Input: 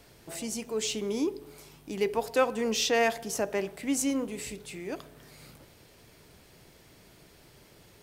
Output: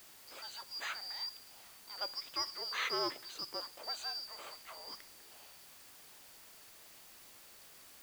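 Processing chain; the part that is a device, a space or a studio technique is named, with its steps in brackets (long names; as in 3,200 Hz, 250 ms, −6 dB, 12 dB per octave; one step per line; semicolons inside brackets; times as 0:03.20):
split-band scrambled radio (band-splitting scrambler in four parts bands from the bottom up 2341; band-pass filter 330–2,900 Hz; white noise bed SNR 13 dB)
level −4 dB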